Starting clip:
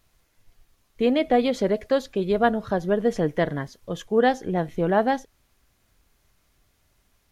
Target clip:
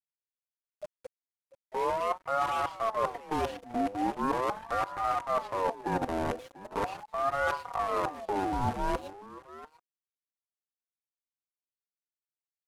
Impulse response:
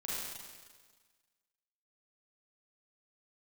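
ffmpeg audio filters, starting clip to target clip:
-af "acrusher=bits=5:dc=4:mix=0:aa=0.000001,asetrate=25442,aresample=44100,aecho=1:1:4.6:0.77,areverse,acompressor=threshold=-29dB:ratio=8,areverse,aeval=exprs='sgn(val(0))*max(abs(val(0))-0.00178,0)':channel_layout=same,highshelf=frequency=2200:gain=-10.5,aecho=1:1:692:0.133,aeval=exprs='val(0)*sin(2*PI*740*n/s+740*0.35/0.4*sin(2*PI*0.4*n/s))':channel_layout=same,volume=5.5dB"

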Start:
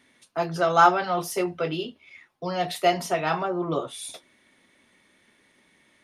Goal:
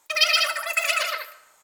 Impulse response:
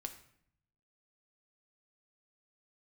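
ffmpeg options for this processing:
-filter_complex "[0:a]asetrate=162729,aresample=44100,aecho=1:1:122.4|195.3:0.794|0.501,asplit=2[link_01][link_02];[1:a]atrim=start_sample=2205,asetrate=29988,aresample=44100[link_03];[link_02][link_03]afir=irnorm=-1:irlink=0,volume=0dB[link_04];[link_01][link_04]amix=inputs=2:normalize=0,volume=-6dB"

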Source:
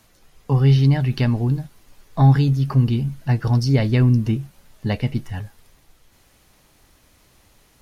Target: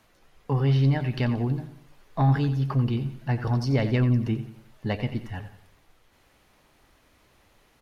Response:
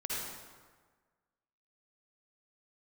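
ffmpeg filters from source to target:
-filter_complex "[0:a]bass=frequency=250:gain=-5,treble=frequency=4000:gain=-9,asoftclip=type=tanh:threshold=-11dB,asplit=2[link_01][link_02];[link_02]aecho=0:1:89|178|267|356:0.237|0.102|0.0438|0.0189[link_03];[link_01][link_03]amix=inputs=2:normalize=0,volume=-2dB"

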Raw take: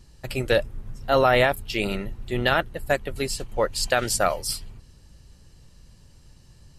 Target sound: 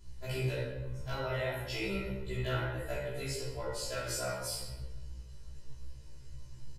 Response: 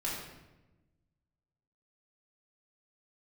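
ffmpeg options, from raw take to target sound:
-filter_complex "[0:a]aecho=1:1:2:0.56,acompressor=threshold=-28dB:ratio=8,aeval=exprs='0.0944*(abs(mod(val(0)/0.0944+3,4)-2)-1)':channel_layout=same[link_01];[1:a]atrim=start_sample=2205[link_02];[link_01][link_02]afir=irnorm=-1:irlink=0,afftfilt=real='re*1.73*eq(mod(b,3),0)':imag='im*1.73*eq(mod(b,3),0)':win_size=2048:overlap=0.75,volume=-5dB"

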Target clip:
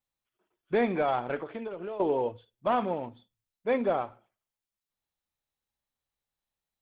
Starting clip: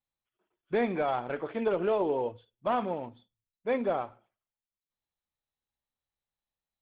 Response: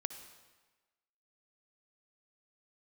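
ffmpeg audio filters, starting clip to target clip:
-filter_complex "[0:a]asettb=1/sr,asplit=3[link_01][link_02][link_03];[link_01]atrim=end=1.364[link_04];[link_02]atrim=start=1.36:end=2,asetpts=PTS-STARTPTS,afade=type=in:duration=0.004:curve=qsin,afade=type=out:start_time=0.636:duration=0.004:curve=qsin,acompressor=threshold=-36dB:ratio=16[link_05];[link_03]atrim=start=1.996[link_06];[link_04][link_05]acrossfade=duration=0.004:curve1=hsin:curve2=qsin[link_07];[link_07][link_06]acrossfade=duration=0.004:curve1=qsin:curve2=hsin,volume=2dB"

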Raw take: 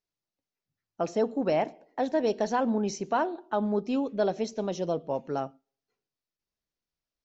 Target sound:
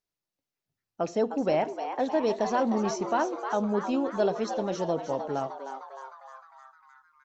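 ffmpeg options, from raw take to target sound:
ffmpeg -i in.wav -filter_complex "[0:a]asplit=8[link_01][link_02][link_03][link_04][link_05][link_06][link_07][link_08];[link_02]adelay=307,afreqshift=130,volume=-9dB[link_09];[link_03]adelay=614,afreqshift=260,volume=-13.6dB[link_10];[link_04]adelay=921,afreqshift=390,volume=-18.2dB[link_11];[link_05]adelay=1228,afreqshift=520,volume=-22.7dB[link_12];[link_06]adelay=1535,afreqshift=650,volume=-27.3dB[link_13];[link_07]adelay=1842,afreqshift=780,volume=-31.9dB[link_14];[link_08]adelay=2149,afreqshift=910,volume=-36.5dB[link_15];[link_01][link_09][link_10][link_11][link_12][link_13][link_14][link_15]amix=inputs=8:normalize=0" out.wav

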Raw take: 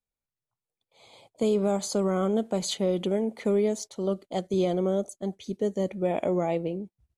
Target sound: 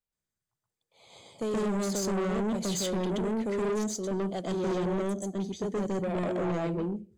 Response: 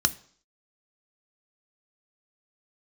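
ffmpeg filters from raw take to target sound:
-filter_complex "[0:a]asplit=2[link_01][link_02];[1:a]atrim=start_sample=2205,asetrate=52920,aresample=44100,adelay=125[link_03];[link_02][link_03]afir=irnorm=-1:irlink=0,volume=-5dB[link_04];[link_01][link_04]amix=inputs=2:normalize=0,asoftclip=type=tanh:threshold=-23.5dB,volume=-3dB"

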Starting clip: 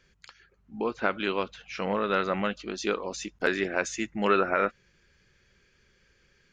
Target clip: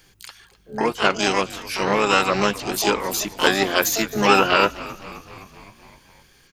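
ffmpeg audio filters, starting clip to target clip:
ffmpeg -i in.wav -filter_complex "[0:a]aemphasis=mode=production:type=50kf,asplit=3[link_01][link_02][link_03];[link_02]asetrate=29433,aresample=44100,atempo=1.49831,volume=-11dB[link_04];[link_03]asetrate=88200,aresample=44100,atempo=0.5,volume=-3dB[link_05];[link_01][link_04][link_05]amix=inputs=3:normalize=0,asplit=7[link_06][link_07][link_08][link_09][link_10][link_11][link_12];[link_07]adelay=259,afreqshift=-73,volume=-18.5dB[link_13];[link_08]adelay=518,afreqshift=-146,volume=-22.2dB[link_14];[link_09]adelay=777,afreqshift=-219,volume=-26dB[link_15];[link_10]adelay=1036,afreqshift=-292,volume=-29.7dB[link_16];[link_11]adelay=1295,afreqshift=-365,volume=-33.5dB[link_17];[link_12]adelay=1554,afreqshift=-438,volume=-37.2dB[link_18];[link_06][link_13][link_14][link_15][link_16][link_17][link_18]amix=inputs=7:normalize=0,volume=6dB" out.wav

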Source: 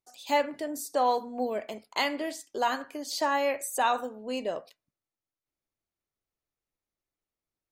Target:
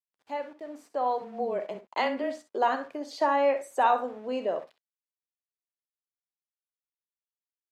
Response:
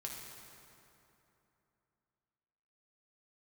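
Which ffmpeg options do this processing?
-filter_complex "[0:a]dynaudnorm=framelen=280:gausssize=9:maxgain=11.5dB,asettb=1/sr,asplit=3[link_01][link_02][link_03];[link_01]atrim=end=1.214[link_04];[link_02]atrim=start=1.21:end=2.48,asetpts=PTS-STARTPTS,afade=type=in:duration=0.004:curve=qsin,afade=type=out:start_time=1.266:duration=0.004:curve=qsin,afreqshift=-21[link_05];[link_03]atrim=start=2.476[link_06];[link_04][link_05]acrossfade=duration=0.004:curve1=hsin:curve2=qsin[link_07];[link_07][link_06]acrossfade=duration=0.004:curve1=qsin:curve2=hsin,aeval=exprs='val(0)*gte(abs(val(0)),0.0119)':channel_layout=same,bandpass=frequency=630:width_type=q:width=0.55:csg=0,asplit=2[link_08][link_09];[link_09]aecho=0:1:11|51|64:0.126|0.15|0.224[link_10];[link_08][link_10]amix=inputs=2:normalize=0,volume=-7.5dB"

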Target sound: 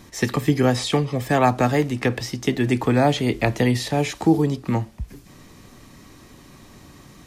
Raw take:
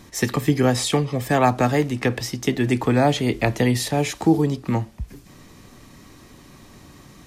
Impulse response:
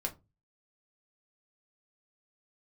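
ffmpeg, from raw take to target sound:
-filter_complex "[0:a]acrossover=split=6100[link_01][link_02];[link_02]acompressor=threshold=-38dB:ratio=4:attack=1:release=60[link_03];[link_01][link_03]amix=inputs=2:normalize=0"

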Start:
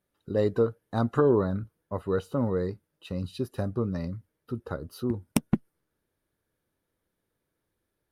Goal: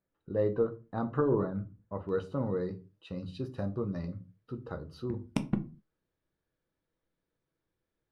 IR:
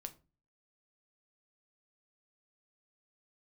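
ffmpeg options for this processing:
-filter_complex "[0:a]asetnsamples=nb_out_samples=441:pad=0,asendcmd='2.09 lowpass f 5400',lowpass=2200[link_01];[1:a]atrim=start_sample=2205,afade=type=out:start_time=0.31:duration=0.01,atrim=end_sample=14112[link_02];[link_01][link_02]afir=irnorm=-1:irlink=0,volume=-1dB"

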